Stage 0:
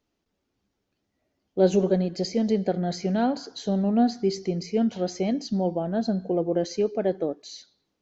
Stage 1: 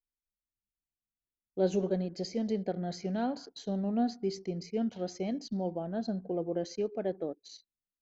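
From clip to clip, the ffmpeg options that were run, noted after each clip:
-af "anlmdn=0.1,volume=0.376"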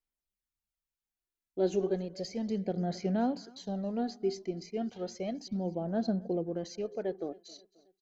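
-af "aecho=1:1:267|534|801:0.0708|0.034|0.0163,aphaser=in_gain=1:out_gain=1:delay=3:decay=0.43:speed=0.33:type=sinusoidal,volume=0.841"

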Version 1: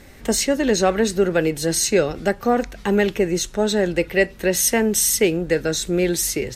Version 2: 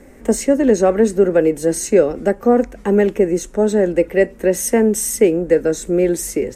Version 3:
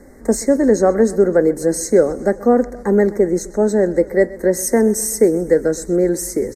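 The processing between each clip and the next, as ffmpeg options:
-filter_complex "[0:a]acrossover=split=270[s0][s1];[s0]acontrast=83[s2];[s2][s1]amix=inputs=2:normalize=0,equalizer=f=125:t=o:w=1:g=-8,equalizer=f=250:t=o:w=1:g=8,equalizer=f=500:t=o:w=1:g=11,equalizer=f=1000:t=o:w=1:g=4,equalizer=f=2000:t=o:w=1:g=4,equalizer=f=4000:t=o:w=1:g=-9,equalizer=f=8000:t=o:w=1:g=7,volume=0.447"
-af "asuperstop=centerf=2900:order=8:qfactor=1.4,aecho=1:1:128|256|384|512|640:0.106|0.0625|0.0369|0.0218|0.0128"

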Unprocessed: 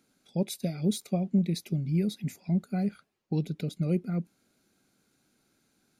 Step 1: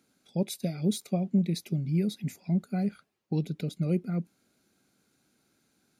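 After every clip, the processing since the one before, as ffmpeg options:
-af "highpass=44"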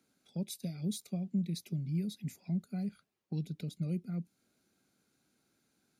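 -filter_complex "[0:a]acrossover=split=220|3000[s0][s1][s2];[s1]acompressor=threshold=0.00398:ratio=2[s3];[s0][s3][s2]amix=inputs=3:normalize=0,volume=0.562"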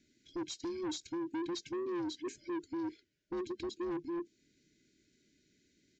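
-af "afftfilt=real='real(if(between(b,1,1008),(2*floor((b-1)/24)+1)*24-b,b),0)':imag='imag(if(between(b,1,1008),(2*floor((b-1)/24)+1)*24-b,b),0)*if(between(b,1,1008),-1,1)':win_size=2048:overlap=0.75,afftfilt=real='re*(1-between(b*sr/4096,630,1400))':imag='im*(1-between(b*sr/4096,630,1400))':win_size=4096:overlap=0.75,aresample=16000,asoftclip=type=tanh:threshold=0.0106,aresample=44100,volume=1.78"

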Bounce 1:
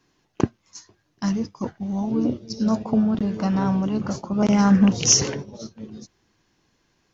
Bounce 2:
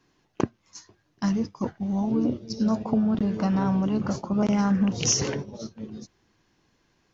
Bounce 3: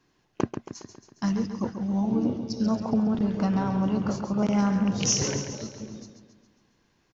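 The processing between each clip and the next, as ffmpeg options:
-af "highshelf=f=5300:g=-5,acompressor=threshold=0.112:ratio=6"
-af "aecho=1:1:137|274|411|548|685|822|959:0.376|0.207|0.114|0.0625|0.0344|0.0189|0.0104,volume=0.841"

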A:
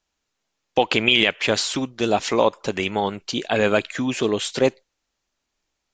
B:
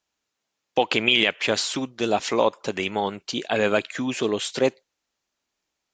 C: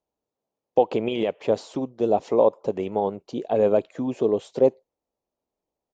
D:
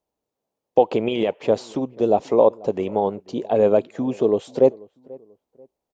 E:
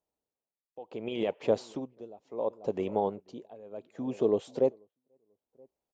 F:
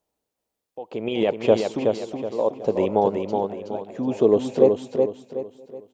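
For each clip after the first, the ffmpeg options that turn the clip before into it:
-af "highpass=f=130:p=1,volume=0.794"
-af "firequalizer=gain_entry='entry(320,0);entry(470,5);entry(930,-3);entry(1500,-18)':delay=0.05:min_phase=1"
-filter_complex "[0:a]asplit=2[s0][s1];[s1]adelay=487,lowpass=f=1300:p=1,volume=0.0708,asplit=2[s2][s3];[s3]adelay=487,lowpass=f=1300:p=1,volume=0.35[s4];[s0][s2][s4]amix=inputs=3:normalize=0,volume=1.41"
-af "tremolo=f=0.69:d=0.95,volume=0.447"
-af "aecho=1:1:372|744|1116|1488|1860:0.596|0.214|0.0772|0.0278|0.01,volume=2.82"

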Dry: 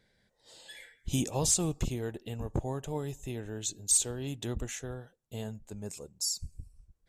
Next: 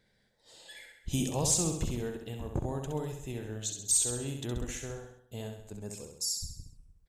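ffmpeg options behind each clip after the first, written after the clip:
-af "aecho=1:1:66|132|198|264|330|396:0.531|0.271|0.138|0.0704|0.0359|0.0183,volume=0.841"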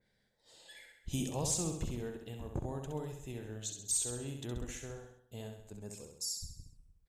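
-af "adynamicequalizer=threshold=0.00398:dfrequency=2800:dqfactor=0.7:tfrequency=2800:tqfactor=0.7:attack=5:release=100:ratio=0.375:range=1.5:mode=cutabove:tftype=highshelf,volume=0.562"

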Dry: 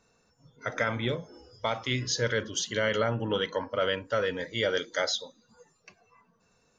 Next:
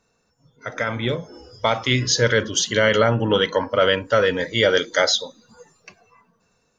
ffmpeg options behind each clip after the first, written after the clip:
-af "dynaudnorm=f=240:g=9:m=3.55"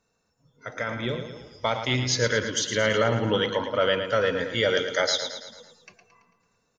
-af "aecho=1:1:111|222|333|444|555|666:0.376|0.199|0.106|0.056|0.0297|0.0157,volume=0.501"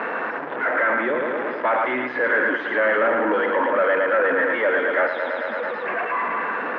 -filter_complex "[0:a]aeval=exprs='val(0)+0.5*0.0398*sgn(val(0))':c=same,asplit=2[s0][s1];[s1]highpass=f=720:p=1,volume=20,asoftclip=type=tanh:threshold=0.355[s2];[s0][s2]amix=inputs=2:normalize=0,lowpass=f=1100:p=1,volume=0.501,highpass=f=270:w=0.5412,highpass=f=270:w=1.3066,equalizer=f=440:t=q:w=4:g=-6,equalizer=f=760:t=q:w=4:g=-3,equalizer=f=1700:t=q:w=4:g=6,lowpass=f=2100:w=0.5412,lowpass=f=2100:w=1.3066"

